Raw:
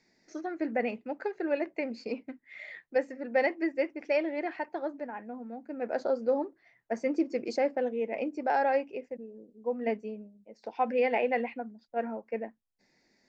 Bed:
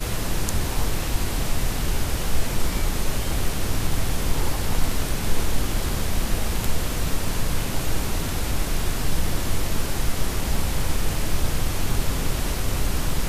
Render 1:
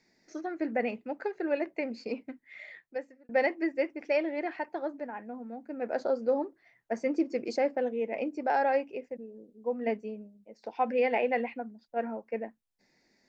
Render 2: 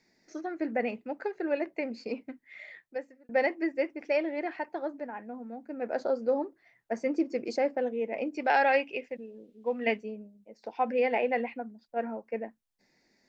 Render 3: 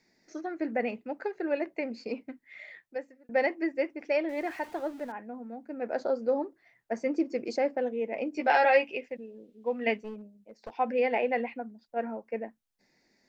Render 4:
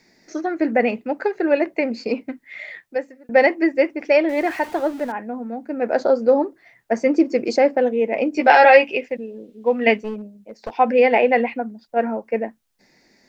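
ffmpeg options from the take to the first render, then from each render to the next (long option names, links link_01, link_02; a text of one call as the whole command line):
ffmpeg -i in.wav -filter_complex "[0:a]asplit=2[link_01][link_02];[link_01]atrim=end=3.29,asetpts=PTS-STARTPTS,afade=type=out:start_time=2.46:duration=0.83[link_03];[link_02]atrim=start=3.29,asetpts=PTS-STARTPTS,afade=type=in:duration=0.004:curve=hsin[link_04];[link_03][link_04]concat=n=2:v=0:a=1" out.wav
ffmpeg -i in.wav -filter_complex "[0:a]asettb=1/sr,asplit=3[link_01][link_02][link_03];[link_01]atrim=end=8.344[link_04];[link_02]atrim=start=8.34:end=10.03,asetpts=PTS-STARTPTS,afade=type=in:duration=0.004:curve=qsin,afade=type=out:start_time=1.686:duration=0.004:curve=qsin,equalizer=frequency=2900:width_type=o:width=1.7:gain=14[link_05];[link_03]atrim=start=10.026[link_06];[link_04][link_05]acrossfade=duration=0.004:curve1=hsin:curve2=qsin[link_07];[link_07][link_06]acrossfade=duration=0.004:curve1=qsin:curve2=hsin" out.wav
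ffmpeg -i in.wav -filter_complex "[0:a]asettb=1/sr,asplit=3[link_01][link_02][link_03];[link_01]atrim=end=4.294[link_04];[link_02]atrim=start=4.29:end=5.12,asetpts=PTS-STARTPTS,afade=type=in:duration=0.004:curve=qsin,afade=type=out:start_time=0.826:duration=0.004:curve=qsin,aeval=exprs='val(0)+0.5*0.00473*sgn(val(0))':channel_layout=same[link_05];[link_03]atrim=start=5.116[link_06];[link_04][link_05]acrossfade=duration=0.004:curve1=hsin:curve2=qsin[link_07];[link_07][link_06]acrossfade=duration=0.004:curve1=qsin:curve2=hsin,asettb=1/sr,asplit=3[link_08][link_09][link_10];[link_08]atrim=end=8.354[link_11];[link_09]atrim=start=8.35:end=8.95,asetpts=PTS-STARTPTS,afade=type=in:duration=0.004:curve=qsin,afade=type=out:start_time=0.596:duration=0.004:curve=qsin,asplit=2[link_12][link_13];[link_13]adelay=13,volume=-3.5dB[link_14];[link_12][link_14]amix=inputs=2:normalize=0,atrim=end_sample=26460[link_15];[link_10]atrim=start=8.946[link_16];[link_11][link_15]acrossfade=duration=0.004:curve1=hsin:curve2=qsin[link_17];[link_17][link_16]acrossfade=duration=0.004:curve1=qsin:curve2=hsin,asettb=1/sr,asplit=3[link_18][link_19][link_20];[link_18]atrim=end=10.014[link_21];[link_19]atrim=start=10.01:end=10.77,asetpts=PTS-STARTPTS,afade=type=in:duration=0.004:curve=qsin,afade=type=out:start_time=0.756:duration=0.004:curve=qsin,aeval=exprs='clip(val(0),-1,0.00944)':channel_layout=same[link_22];[link_20]atrim=start=10.766[link_23];[link_21][link_22]acrossfade=duration=0.004:curve1=hsin:curve2=qsin[link_24];[link_24][link_23]acrossfade=duration=0.004:curve1=qsin:curve2=hsin" out.wav
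ffmpeg -i in.wav -af "volume=12dB,alimiter=limit=-1dB:level=0:latency=1" out.wav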